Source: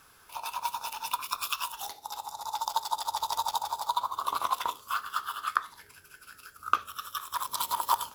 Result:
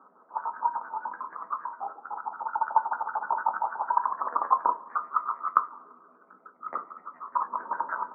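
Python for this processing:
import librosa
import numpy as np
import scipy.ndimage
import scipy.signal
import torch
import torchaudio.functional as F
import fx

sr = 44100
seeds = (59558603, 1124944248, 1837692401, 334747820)

y = fx.pitch_trill(x, sr, semitones=8.5, every_ms=75)
y = scipy.signal.sosfilt(scipy.signal.cheby1(5, 1.0, [190.0, 1300.0], 'bandpass', fs=sr, output='sos'), y)
y = fx.rev_double_slope(y, sr, seeds[0], early_s=0.3, late_s=1.9, knee_db=-18, drr_db=8.5)
y = y * 10.0 ** (7.0 / 20.0)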